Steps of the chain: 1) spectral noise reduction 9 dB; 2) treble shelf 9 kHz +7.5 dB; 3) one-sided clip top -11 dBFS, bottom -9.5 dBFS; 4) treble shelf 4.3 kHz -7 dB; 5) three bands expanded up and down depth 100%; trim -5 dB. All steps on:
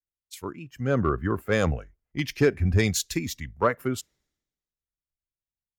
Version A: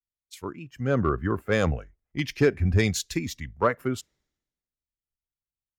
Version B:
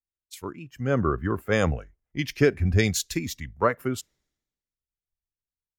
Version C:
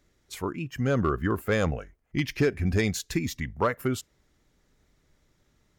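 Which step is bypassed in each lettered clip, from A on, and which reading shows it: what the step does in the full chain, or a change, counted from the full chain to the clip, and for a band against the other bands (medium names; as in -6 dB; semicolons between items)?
2, 8 kHz band -3.0 dB; 3, distortion -20 dB; 5, 8 kHz band -3.5 dB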